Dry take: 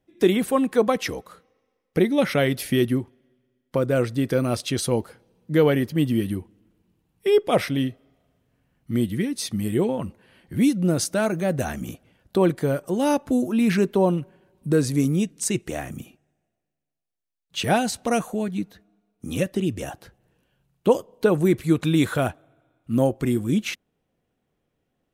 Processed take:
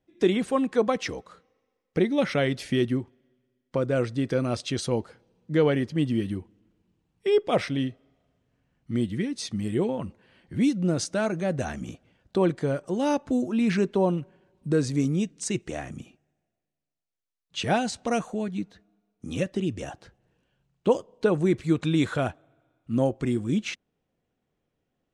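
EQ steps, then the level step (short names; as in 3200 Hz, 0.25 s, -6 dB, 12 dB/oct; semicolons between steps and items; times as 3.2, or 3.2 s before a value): LPF 7900 Hz 24 dB/oct; -3.5 dB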